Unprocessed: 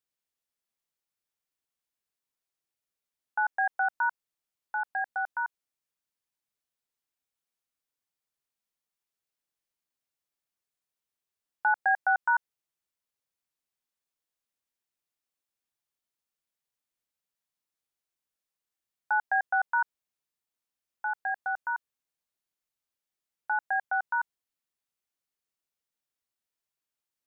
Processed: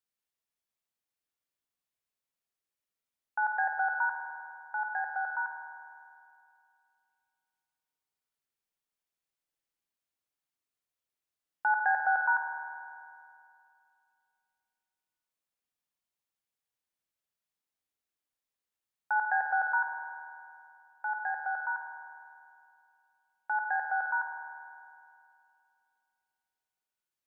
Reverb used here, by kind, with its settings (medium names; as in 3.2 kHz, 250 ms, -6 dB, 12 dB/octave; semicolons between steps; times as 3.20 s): spring tank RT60 2.5 s, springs 50 ms, chirp 40 ms, DRR 3 dB; trim -3 dB